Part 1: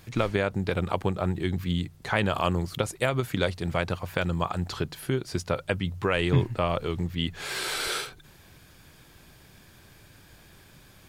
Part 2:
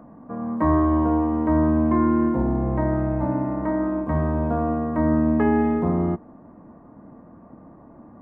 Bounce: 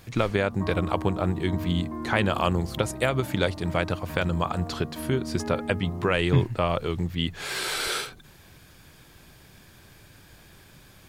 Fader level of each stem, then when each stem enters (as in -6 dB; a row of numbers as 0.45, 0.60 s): +1.5, -15.0 dB; 0.00, 0.00 s